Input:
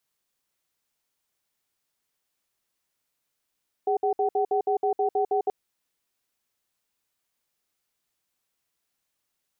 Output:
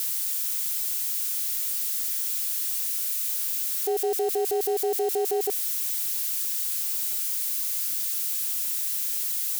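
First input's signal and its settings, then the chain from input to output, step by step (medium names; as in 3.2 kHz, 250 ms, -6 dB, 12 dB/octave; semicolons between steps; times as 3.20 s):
cadence 410 Hz, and 757 Hz, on 0.10 s, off 0.06 s, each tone -23.5 dBFS 1.63 s
zero-crossing glitches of -29 dBFS; high-order bell 720 Hz -9 dB 1.1 oct; in parallel at 0 dB: peak limiter -32 dBFS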